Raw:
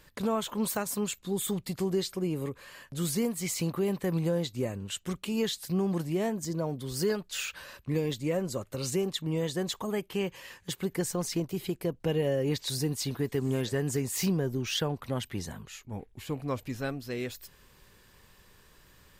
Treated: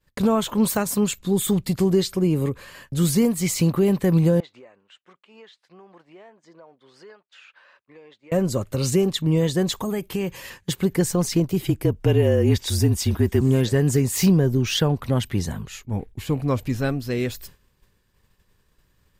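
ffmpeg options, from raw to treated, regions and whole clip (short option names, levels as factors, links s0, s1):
-filter_complex "[0:a]asettb=1/sr,asplit=3[s0][s1][s2];[s0]atrim=end=4.404[s3];[s1]atrim=start=4.4:end=8.32,asetpts=PTS-STARTPTS,afade=t=in:d=0.004:c=qsin,afade=t=out:st=3.916:d=0.004:c=qsin,highpass=730,lowpass=2400,acompressor=threshold=0.00355:ratio=5:attack=3.2:release=140:knee=1:detection=peak[s4];[s2]atrim=start=8.316[s5];[s3][s4]acrossfade=d=0.004:c1=hsin:c2=qsin[s6];[s6][s5]acrossfade=d=0.004:c1=qsin:c2=hsin,asettb=1/sr,asplit=3[s7][s8][s9];[s7]atrim=end=9.734[s10];[s8]atrim=start=9.73:end=10.5,asetpts=PTS-STARTPTS,afade=t=in:d=0.004:c=qsin,afade=t=out:st=0.766:d=0.004:c=qsin,highshelf=f=7400:g=7,bandreject=f=3000:w=19,acompressor=threshold=0.0224:ratio=2.5:attack=3.2:release=140:knee=1:detection=peak[s11];[s9]atrim=start=10.496[s12];[s10][s11]acrossfade=d=0.004:c1=hsin:c2=qsin[s13];[s13][s12]acrossfade=d=0.004:c1=qsin:c2=hsin,asettb=1/sr,asplit=3[s14][s15][s16];[s14]atrim=end=11.624[s17];[s15]atrim=start=11.62:end=13.41,asetpts=PTS-STARTPTS,afade=t=in:d=0.004:c=qsin,afade=t=out:st=1.786:d=0.004:c=qsin,bandreject=f=4200:w=7.8,afreqshift=-37[s18];[s16]atrim=start=13.406[s19];[s17][s18]acrossfade=d=0.004:c1=hsin:c2=qsin[s20];[s20][s19]acrossfade=d=0.004:c1=qsin:c2=hsin,agate=range=0.0224:threshold=0.00501:ratio=3:detection=peak,lowshelf=f=250:g=7.5,acontrast=85"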